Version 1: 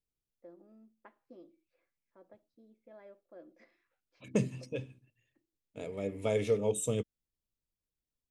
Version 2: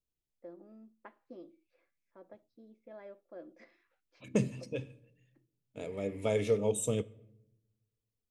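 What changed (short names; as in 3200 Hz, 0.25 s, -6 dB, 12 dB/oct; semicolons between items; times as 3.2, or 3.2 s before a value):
first voice +4.5 dB; reverb: on, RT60 0.85 s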